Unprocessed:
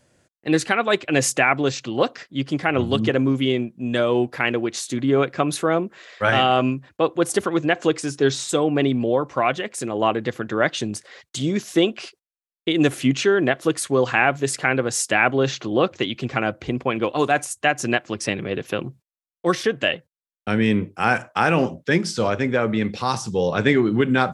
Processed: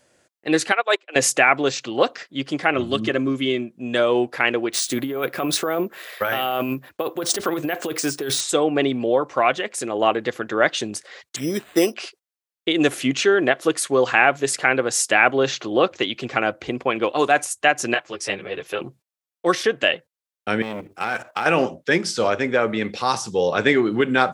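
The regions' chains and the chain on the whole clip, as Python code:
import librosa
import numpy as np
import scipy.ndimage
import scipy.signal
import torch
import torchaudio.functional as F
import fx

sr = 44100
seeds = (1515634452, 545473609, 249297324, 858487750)

y = fx.chain(x, sr, fx.highpass(hz=390.0, slope=24),
    fx.upward_expand(threshold_db=-32.0, expansion=2.5), at=(0.72, 1.16))
y = fx.chain(y, sr, fx.peak_eq(hz=780.0, db=-12.5, octaves=0.21),
    fx.notch_comb(f0_hz=480.0), at=(2.74, 3.71))
y = fx.chain(y, sr, fx.over_compress(threshold_db=-23.0, ratio=-1.0),
    fx.resample_bad(factor=3, down='none', up='hold'), at=(4.73, 8.41))
y = fx.chain(y, sr, fx.lowpass(hz=2400.0, slope=12),
    fx.resample_bad(factor=8, down='none', up='hold'), at=(11.36, 11.94))
y = fx.chain(y, sr, fx.peak_eq(hz=240.0, db=-13.0, octaves=0.39),
    fx.ensemble(), at=(17.94, 18.81))
y = fx.chain(y, sr, fx.law_mismatch(coded='mu'),
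    fx.level_steps(step_db=12),
    fx.transformer_sat(knee_hz=1100.0), at=(20.62, 21.46))
y = fx.bass_treble(y, sr, bass_db=-11, treble_db=0)
y = fx.notch(y, sr, hz=1000.0, q=29.0)
y = y * librosa.db_to_amplitude(2.5)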